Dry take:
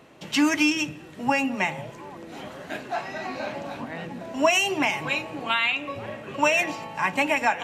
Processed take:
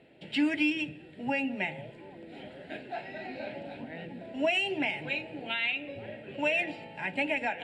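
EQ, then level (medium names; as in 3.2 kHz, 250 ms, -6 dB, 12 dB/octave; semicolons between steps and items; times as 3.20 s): low-pass 8.5 kHz 24 dB/octave; peaking EQ 750 Hz +5 dB 2.8 oct; static phaser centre 2.7 kHz, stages 4; -7.5 dB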